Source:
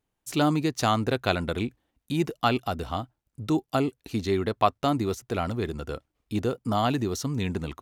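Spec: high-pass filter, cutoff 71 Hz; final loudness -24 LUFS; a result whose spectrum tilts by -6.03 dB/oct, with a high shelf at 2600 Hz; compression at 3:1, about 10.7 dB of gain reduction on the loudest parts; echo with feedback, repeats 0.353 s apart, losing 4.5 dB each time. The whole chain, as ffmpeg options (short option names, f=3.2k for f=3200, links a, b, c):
-af "highpass=71,highshelf=f=2.6k:g=-7,acompressor=threshold=-31dB:ratio=3,aecho=1:1:353|706|1059|1412|1765|2118|2471|2824|3177:0.596|0.357|0.214|0.129|0.0772|0.0463|0.0278|0.0167|0.01,volume=9.5dB"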